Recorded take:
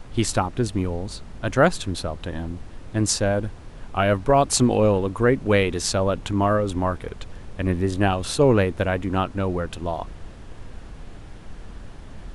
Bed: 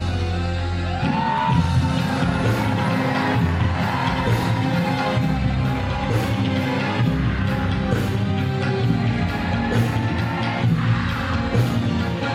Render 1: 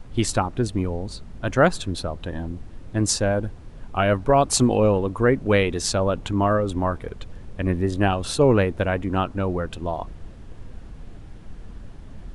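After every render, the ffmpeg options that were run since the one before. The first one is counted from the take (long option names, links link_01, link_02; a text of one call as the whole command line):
ffmpeg -i in.wav -af "afftdn=noise_reduction=6:noise_floor=-41" out.wav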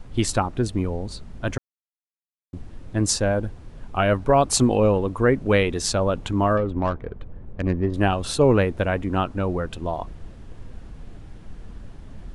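ffmpeg -i in.wav -filter_complex "[0:a]asettb=1/sr,asplit=3[link_01][link_02][link_03];[link_01]atrim=end=6.574[link_04];[link_02]atrim=start=6.57:end=7.94,asetpts=PTS-STARTPTS,afade=type=in:duration=0.004:curve=qsin,afade=type=out:start_time=1.366:duration=0.004:curve=qsin,adynamicsmooth=sensitivity=1.5:basefreq=1300[link_05];[link_03]atrim=start=7.936[link_06];[link_04][link_05]acrossfade=duration=0.004:curve1=hsin:curve2=qsin[link_07];[link_07][link_06]acrossfade=duration=0.004:curve1=qsin:curve2=hsin,asplit=3[link_08][link_09][link_10];[link_08]atrim=end=1.58,asetpts=PTS-STARTPTS,afade=type=out:start_time=1.576:duration=0.004:curve=hsin[link_11];[link_09]atrim=start=1.58:end=2.53,asetpts=PTS-STARTPTS,volume=0[link_12];[link_10]atrim=start=2.53,asetpts=PTS-STARTPTS,afade=type=in:duration=0.004:curve=hsin[link_13];[link_11][link_12][link_13]concat=n=3:v=0:a=1" out.wav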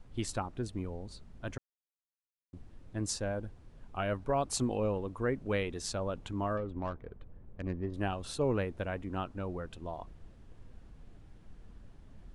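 ffmpeg -i in.wav -af "volume=-13.5dB" out.wav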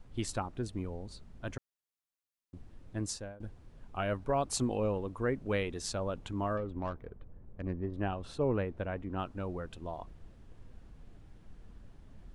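ffmpeg -i in.wav -filter_complex "[0:a]asettb=1/sr,asplit=3[link_01][link_02][link_03];[link_01]atrim=end=7.104[link_04];[link_02]atrim=start=7.1:end=9.19,asetpts=PTS-STARTPTS,afade=type=in:duration=0.004:curve=qsin,afade=type=out:start_time=2.086:duration=0.004:curve=qsin,lowpass=frequency=2000:poles=1[link_05];[link_03]atrim=start=9.186[link_06];[link_04][link_05]acrossfade=duration=0.004:curve1=hsin:curve2=qsin[link_07];[link_07][link_06]acrossfade=duration=0.004:curve1=qsin:curve2=hsin,asplit=2[link_08][link_09];[link_08]atrim=end=3.4,asetpts=PTS-STARTPTS,afade=type=out:start_time=2.98:duration=0.42:silence=0.0707946[link_10];[link_09]atrim=start=3.4,asetpts=PTS-STARTPTS,afade=type=in:duration=0.004:curve=hsin:silence=0.0707946[link_11];[link_10][link_11]concat=n=2:v=0:a=1" out.wav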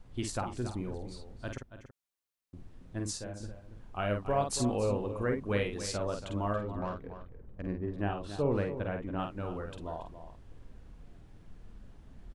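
ffmpeg -i in.wav -filter_complex "[0:a]asplit=2[link_01][link_02];[link_02]adelay=49,volume=-5.5dB[link_03];[link_01][link_03]amix=inputs=2:normalize=0,asplit=2[link_04][link_05];[link_05]adelay=279.9,volume=-11dB,highshelf=frequency=4000:gain=-6.3[link_06];[link_04][link_06]amix=inputs=2:normalize=0" out.wav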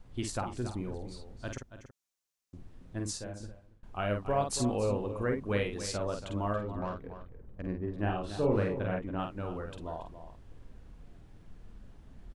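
ffmpeg -i in.wav -filter_complex "[0:a]asettb=1/sr,asplit=3[link_01][link_02][link_03];[link_01]atrim=end=1.374[link_04];[link_02]atrim=start=1.37:end=2.57,asetpts=PTS-STARTPTS,afade=type=in:duration=0.004:curve=qsin,afade=type=out:start_time=1.196:duration=0.004:curve=qsin,equalizer=frequency=6300:width=1.5:gain=7[link_05];[link_03]atrim=start=2.566[link_06];[link_04][link_05]acrossfade=duration=0.004:curve1=hsin:curve2=qsin[link_07];[link_07][link_06]acrossfade=duration=0.004:curve1=qsin:curve2=hsin,asettb=1/sr,asplit=3[link_08][link_09][link_10];[link_08]atrim=end=7.994[link_11];[link_09]atrim=start=7.99:end=8.99,asetpts=PTS-STARTPTS,afade=type=in:duration=0.004:curve=qsin,afade=type=out:start_time=0.996:duration=0.004:curve=qsin,asplit=2[link_12][link_13];[link_13]adelay=38,volume=-2.5dB[link_14];[link_12][link_14]amix=inputs=2:normalize=0,atrim=end_sample=44100[link_15];[link_10]atrim=start=8.986[link_16];[link_11][link_15]acrossfade=duration=0.004:curve1=hsin:curve2=qsin[link_17];[link_17][link_16]acrossfade=duration=0.004:curve1=qsin:curve2=hsin,asplit=2[link_18][link_19];[link_18]atrim=end=3.83,asetpts=PTS-STARTPTS,afade=type=out:start_time=3.34:duration=0.49:silence=0.0841395[link_20];[link_19]atrim=start=3.83,asetpts=PTS-STARTPTS,afade=type=in:duration=0.004:curve=hsin:silence=0.0841395[link_21];[link_20][link_21]concat=n=2:v=0:a=1" out.wav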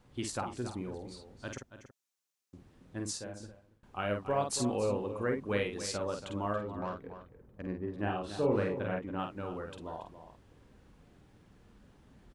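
ffmpeg -i in.wav -af "highpass=frequency=160:poles=1,bandreject=frequency=670:width=15" out.wav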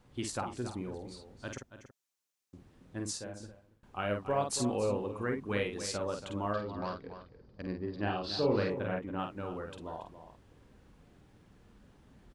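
ffmpeg -i in.wav -filter_complex "[0:a]asettb=1/sr,asplit=3[link_01][link_02][link_03];[link_01]atrim=end=5.114[link_04];[link_02]atrim=start=5.11:end=5.57,asetpts=PTS-STARTPTS,afade=type=in:duration=0.004:curve=qsin,afade=type=out:start_time=0.456:duration=0.004:curve=qsin,equalizer=frequency=560:width_type=o:width=0.4:gain=-8.5[link_05];[link_03]atrim=start=5.566[link_06];[link_04][link_05]acrossfade=duration=0.004:curve1=hsin:curve2=qsin[link_07];[link_07][link_06]acrossfade=duration=0.004:curve1=qsin:curve2=hsin,asettb=1/sr,asplit=3[link_08][link_09][link_10];[link_08]atrim=end=6.534[link_11];[link_09]atrim=start=6.53:end=8.7,asetpts=PTS-STARTPTS,afade=type=in:duration=0.004:curve=qsin,afade=type=out:start_time=2.166:duration=0.004:curve=qsin,lowpass=frequency=4700:width_type=q:width=10[link_12];[link_10]atrim=start=8.696[link_13];[link_11][link_12]acrossfade=duration=0.004:curve1=hsin:curve2=qsin[link_14];[link_14][link_13]acrossfade=duration=0.004:curve1=qsin:curve2=hsin" out.wav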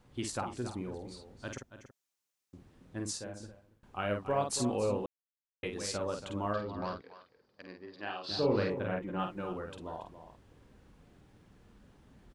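ffmpeg -i in.wav -filter_complex "[0:a]asettb=1/sr,asplit=3[link_01][link_02][link_03];[link_01]atrim=end=7.014[link_04];[link_02]atrim=start=7.01:end=8.29,asetpts=PTS-STARTPTS,afade=type=in:duration=0.004:curve=qsin,afade=type=out:start_time=1.276:duration=0.004:curve=qsin,highpass=frequency=1100:poles=1[link_05];[link_03]atrim=start=8.286[link_06];[link_04][link_05]acrossfade=duration=0.004:curve1=hsin:curve2=qsin[link_07];[link_07][link_06]acrossfade=duration=0.004:curve1=qsin:curve2=hsin,asettb=1/sr,asplit=3[link_08][link_09][link_10];[link_08]atrim=end=9.004[link_11];[link_09]atrim=start=9:end=9.53,asetpts=PTS-STARTPTS,afade=type=in:duration=0.004:curve=qsin,afade=type=out:start_time=0.526:duration=0.004:curve=qsin,aecho=1:1:5.7:0.65,atrim=end_sample=23373[link_12];[link_10]atrim=start=9.526[link_13];[link_11][link_12]acrossfade=duration=0.004:curve1=hsin:curve2=qsin[link_14];[link_14][link_13]acrossfade=duration=0.004:curve1=qsin:curve2=hsin,asplit=3[link_15][link_16][link_17];[link_15]atrim=end=5.06,asetpts=PTS-STARTPTS,afade=type=out:start_time=5.056:duration=0.004:curve=hsin[link_18];[link_16]atrim=start=5.06:end=5.63,asetpts=PTS-STARTPTS,volume=0[link_19];[link_17]atrim=start=5.63,asetpts=PTS-STARTPTS,afade=type=in:duration=0.004:curve=hsin[link_20];[link_18][link_19][link_20]concat=n=3:v=0:a=1" out.wav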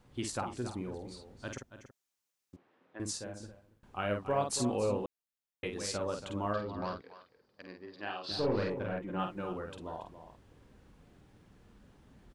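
ffmpeg -i in.wav -filter_complex "[0:a]asettb=1/sr,asplit=3[link_01][link_02][link_03];[link_01]atrim=end=2.564[link_04];[link_02]atrim=start=2.56:end=3,asetpts=PTS-STARTPTS,afade=type=in:duration=0.004:curve=qsin,afade=type=out:start_time=0.436:duration=0.004:curve=qsin,highpass=500,lowpass=2500[link_05];[link_03]atrim=start=2.996[link_06];[link_04][link_05]acrossfade=duration=0.004:curve1=hsin:curve2=qsin[link_07];[link_07][link_06]acrossfade=duration=0.004:curve1=qsin:curve2=hsin,asettb=1/sr,asplit=3[link_08][link_09][link_10];[link_08]atrim=end=8.324[link_11];[link_09]atrim=start=8.32:end=9.1,asetpts=PTS-STARTPTS,afade=type=in:duration=0.004:curve=qsin,afade=type=out:start_time=0.776:duration=0.004:curve=qsin,aeval=exprs='(tanh(12.6*val(0)+0.35)-tanh(0.35))/12.6':channel_layout=same[link_12];[link_10]atrim=start=9.096[link_13];[link_11][link_12]acrossfade=duration=0.004:curve1=hsin:curve2=qsin[link_14];[link_14][link_13]acrossfade=duration=0.004:curve1=qsin:curve2=hsin" out.wav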